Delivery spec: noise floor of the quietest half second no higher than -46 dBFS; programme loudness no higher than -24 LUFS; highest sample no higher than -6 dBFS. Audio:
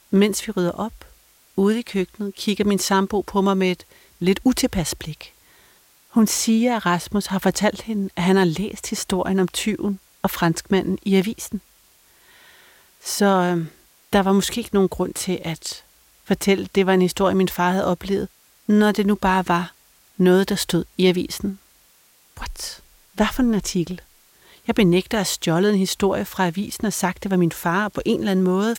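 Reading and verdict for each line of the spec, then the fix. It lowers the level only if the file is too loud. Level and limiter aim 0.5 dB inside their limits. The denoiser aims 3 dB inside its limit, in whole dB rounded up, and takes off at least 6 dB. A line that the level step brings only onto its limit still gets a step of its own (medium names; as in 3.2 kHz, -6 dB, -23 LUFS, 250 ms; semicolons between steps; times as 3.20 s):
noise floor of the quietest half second -56 dBFS: pass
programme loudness -21.0 LUFS: fail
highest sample -5.5 dBFS: fail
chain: trim -3.5 dB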